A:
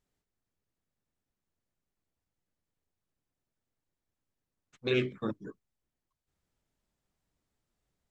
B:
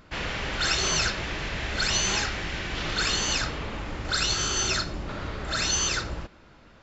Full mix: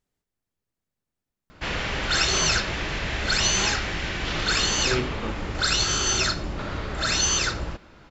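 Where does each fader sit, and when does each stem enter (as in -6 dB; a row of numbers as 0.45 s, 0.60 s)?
+1.0 dB, +3.0 dB; 0.00 s, 1.50 s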